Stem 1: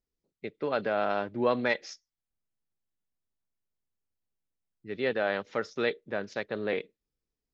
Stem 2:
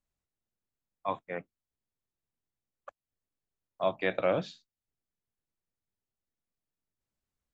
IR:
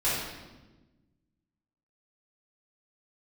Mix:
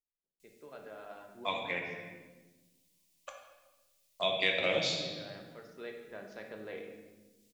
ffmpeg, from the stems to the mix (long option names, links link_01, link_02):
-filter_complex "[0:a]volume=-15dB,afade=type=in:start_time=5.59:duration=0.67:silence=0.398107,asplit=2[link_01][link_02];[link_02]volume=-11.5dB[link_03];[1:a]aexciter=amount=7:drive=6.4:freq=2100,adelay=400,volume=-1.5dB,asplit=2[link_04][link_05];[link_05]volume=-10dB[link_06];[2:a]atrim=start_sample=2205[link_07];[link_03][link_06]amix=inputs=2:normalize=0[link_08];[link_08][link_07]afir=irnorm=-1:irlink=0[link_09];[link_01][link_04][link_09]amix=inputs=3:normalize=0,acompressor=threshold=-40dB:ratio=1.5"